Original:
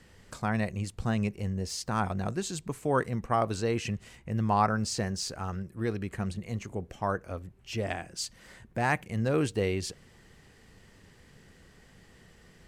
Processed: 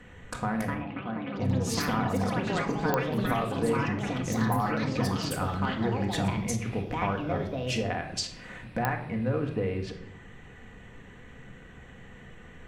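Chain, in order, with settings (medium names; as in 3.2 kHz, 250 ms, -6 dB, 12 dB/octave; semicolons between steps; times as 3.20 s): local Wiener filter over 9 samples; low-pass that closes with the level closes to 1.6 kHz, closed at -28 dBFS; tilt shelf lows -3 dB; compression, threshold -36 dBFS, peak gain reduction 15 dB; ever faster or slower copies 361 ms, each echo +5 st, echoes 3; 0.74–1.36 s: cabinet simulation 290–2700 Hz, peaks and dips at 420 Hz -10 dB, 940 Hz -4 dB, 1.8 kHz -8 dB; reverberation RT60 0.70 s, pre-delay 4 ms, DRR 3 dB; clicks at 2.94/8.85 s, -19 dBFS; endings held to a fixed fall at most 200 dB/s; trim +7.5 dB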